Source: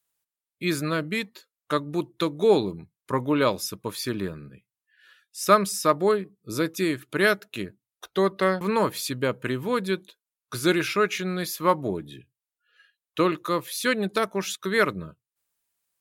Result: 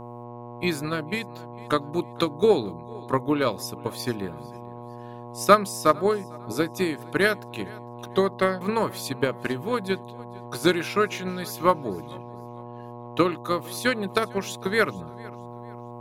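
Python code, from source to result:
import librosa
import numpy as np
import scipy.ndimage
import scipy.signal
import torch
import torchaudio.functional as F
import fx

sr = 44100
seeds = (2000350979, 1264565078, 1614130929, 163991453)

p1 = x + fx.echo_feedback(x, sr, ms=453, feedback_pct=34, wet_db=-21, dry=0)
p2 = fx.cheby_harmonics(p1, sr, harmonics=(3,), levels_db=(-28,), full_scale_db=-5.0)
p3 = fx.dmg_buzz(p2, sr, base_hz=120.0, harmonics=9, level_db=-38.0, tilt_db=-2, odd_only=False)
p4 = fx.transient(p3, sr, attack_db=7, sustain_db=0)
y = F.gain(torch.from_numpy(p4), -2.5).numpy()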